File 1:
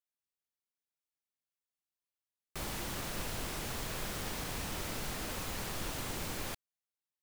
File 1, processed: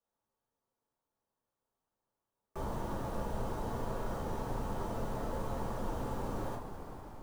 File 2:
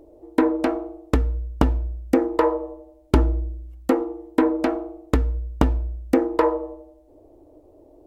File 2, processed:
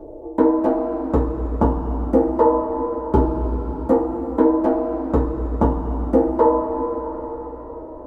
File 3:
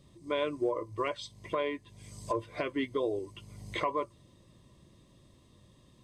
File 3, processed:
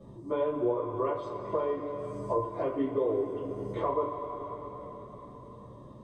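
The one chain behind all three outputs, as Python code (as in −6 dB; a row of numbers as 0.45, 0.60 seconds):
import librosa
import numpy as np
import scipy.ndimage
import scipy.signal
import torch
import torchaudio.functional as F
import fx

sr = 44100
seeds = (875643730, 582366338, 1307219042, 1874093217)

y = fx.curve_eq(x, sr, hz=(510.0, 970.0, 2300.0), db=(0, 2, -19))
y = fx.rev_double_slope(y, sr, seeds[0], early_s=0.23, late_s=3.5, knee_db=-18, drr_db=-9.5)
y = fx.band_squash(y, sr, depth_pct=40)
y = y * librosa.db_to_amplitude(-6.0)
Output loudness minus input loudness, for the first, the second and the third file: −1.0, +3.0, +2.5 LU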